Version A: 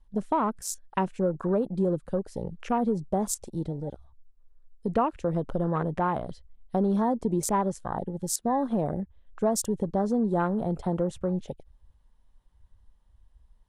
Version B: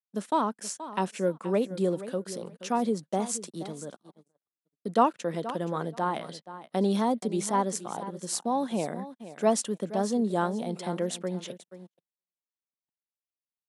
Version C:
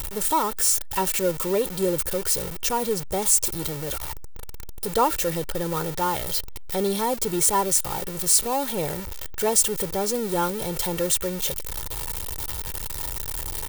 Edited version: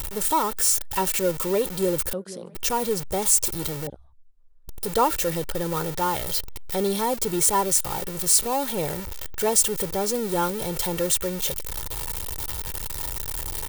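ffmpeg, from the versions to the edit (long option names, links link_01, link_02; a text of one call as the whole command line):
ffmpeg -i take0.wav -i take1.wav -i take2.wav -filter_complex "[2:a]asplit=3[link_01][link_02][link_03];[link_01]atrim=end=2.132[link_04];[1:a]atrim=start=2.128:end=2.552[link_05];[link_02]atrim=start=2.548:end=3.872[link_06];[0:a]atrim=start=3.868:end=4.682[link_07];[link_03]atrim=start=4.678[link_08];[link_04][link_05]acrossfade=duration=0.004:curve1=hsin:curve2=hsin[link_09];[link_09][link_06]acrossfade=duration=0.004:curve1=hsin:curve2=hsin[link_10];[link_10][link_07]acrossfade=duration=0.004:curve1=hsin:curve2=hsin[link_11];[link_11][link_08]acrossfade=duration=0.004:curve1=hsin:curve2=hsin" out.wav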